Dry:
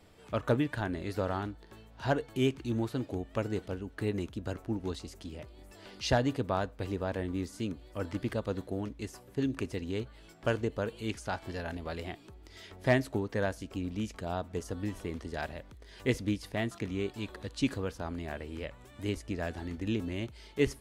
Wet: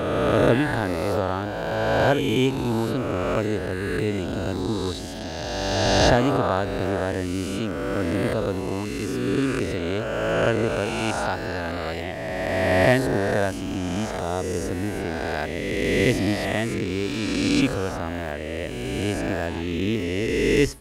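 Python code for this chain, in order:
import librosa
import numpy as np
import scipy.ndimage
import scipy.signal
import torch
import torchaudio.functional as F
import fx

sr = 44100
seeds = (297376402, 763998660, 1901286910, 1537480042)

y = fx.spec_swells(x, sr, rise_s=2.68)
y = y * librosa.db_to_amplitude(5.5)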